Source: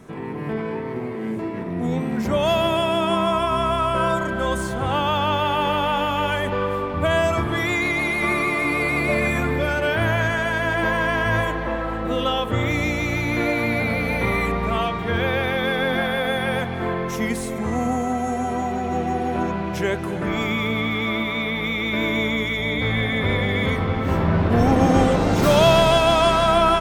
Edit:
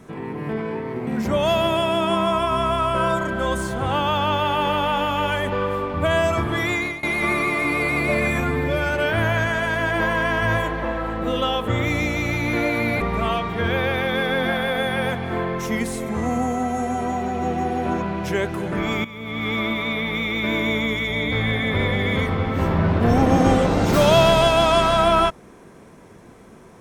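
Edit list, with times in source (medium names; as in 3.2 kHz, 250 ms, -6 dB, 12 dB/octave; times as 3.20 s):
1.07–2.07 s: delete
7.64–8.03 s: fade out equal-power, to -21 dB
9.40–9.73 s: stretch 1.5×
13.84–14.50 s: delete
20.54–20.98 s: fade in quadratic, from -14.5 dB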